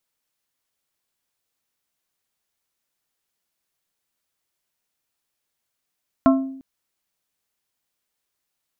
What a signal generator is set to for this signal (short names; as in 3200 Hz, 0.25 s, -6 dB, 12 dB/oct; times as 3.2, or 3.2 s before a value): glass hit plate, length 0.35 s, lowest mode 267 Hz, modes 4, decay 0.71 s, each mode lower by 4 dB, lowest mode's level -10 dB